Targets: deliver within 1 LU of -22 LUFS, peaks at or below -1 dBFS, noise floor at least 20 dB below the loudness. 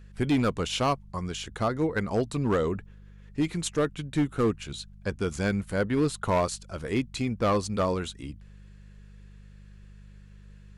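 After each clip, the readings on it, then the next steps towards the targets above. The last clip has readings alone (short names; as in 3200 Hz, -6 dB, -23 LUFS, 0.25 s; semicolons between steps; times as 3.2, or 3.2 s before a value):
clipped 1.0%; flat tops at -18.5 dBFS; hum 50 Hz; harmonics up to 200 Hz; hum level -45 dBFS; loudness -28.5 LUFS; peak -18.5 dBFS; loudness target -22.0 LUFS
-> clip repair -18.5 dBFS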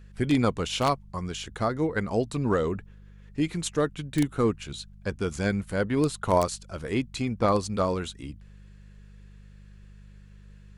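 clipped 0.0%; hum 50 Hz; harmonics up to 200 Hz; hum level -45 dBFS
-> de-hum 50 Hz, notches 4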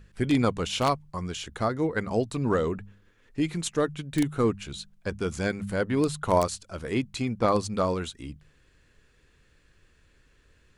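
hum none; loudness -28.0 LUFS; peak -9.5 dBFS; loudness target -22.0 LUFS
-> gain +6 dB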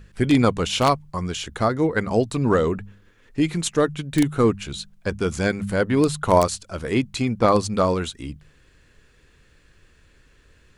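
loudness -22.0 LUFS; peak -3.5 dBFS; noise floor -57 dBFS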